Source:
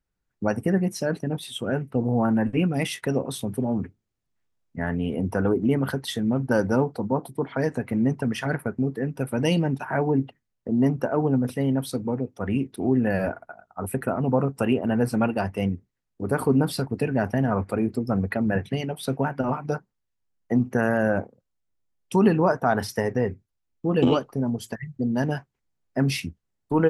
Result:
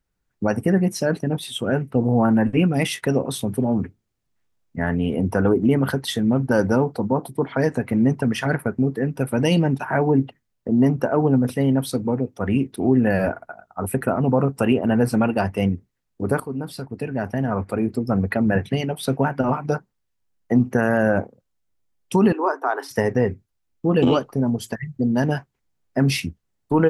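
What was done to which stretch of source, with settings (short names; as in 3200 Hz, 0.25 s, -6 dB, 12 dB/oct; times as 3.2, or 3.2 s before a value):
16.4–18.44 fade in, from -16 dB
22.32–22.91 rippled Chebyshev high-pass 270 Hz, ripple 9 dB
whole clip: maximiser +11 dB; gain -6.5 dB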